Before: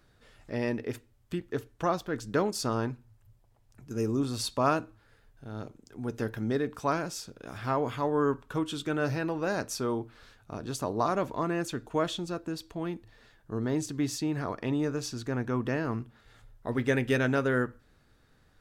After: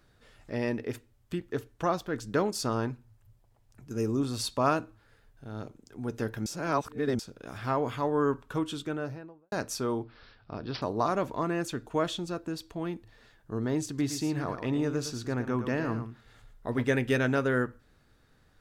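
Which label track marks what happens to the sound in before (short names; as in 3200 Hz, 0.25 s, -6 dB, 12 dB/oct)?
6.460000	7.190000	reverse
8.600000	9.520000	studio fade out
10.030000	10.820000	careless resampling rate divided by 4×, down none, up filtered
13.870000	16.840000	echo 0.113 s -9.5 dB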